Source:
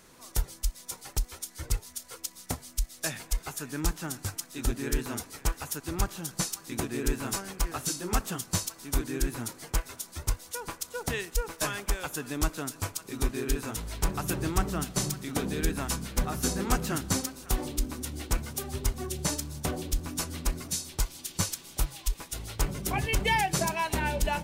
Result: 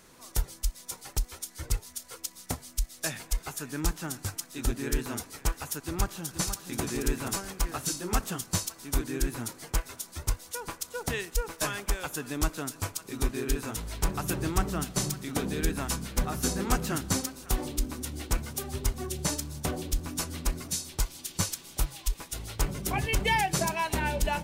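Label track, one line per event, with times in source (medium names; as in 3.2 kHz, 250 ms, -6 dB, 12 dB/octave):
5.850000	6.800000	echo throw 480 ms, feedback 45%, level -8.5 dB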